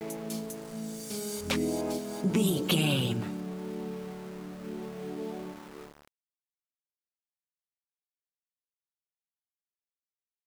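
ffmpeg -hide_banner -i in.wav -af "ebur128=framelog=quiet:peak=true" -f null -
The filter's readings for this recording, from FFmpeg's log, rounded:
Integrated loudness:
  I:         -32.4 LUFS
  Threshold: -42.9 LUFS
Loudness range:
  LRA:        14.7 LU
  Threshold: -53.8 LUFS
  LRA low:   -45.0 LUFS
  LRA high:  -30.3 LUFS
True peak:
  Peak:      -13.3 dBFS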